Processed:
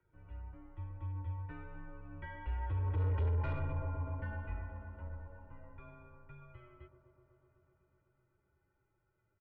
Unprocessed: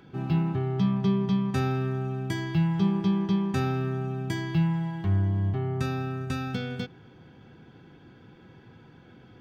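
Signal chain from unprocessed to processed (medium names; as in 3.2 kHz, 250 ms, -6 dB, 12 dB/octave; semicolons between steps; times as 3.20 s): Doppler pass-by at 3.19 s, 12 m/s, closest 2 m; flange 1.1 Hz, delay 8.3 ms, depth 2.5 ms, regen +27%; on a send: feedback echo behind a band-pass 125 ms, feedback 83%, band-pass 560 Hz, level -8 dB; on the sum: mistuned SSB -110 Hz 160–2500 Hz; saturation -35 dBFS, distortion -5 dB; peak limiter -39 dBFS, peak gain reduction 4 dB; comb 2.1 ms, depth 92%; trim +5.5 dB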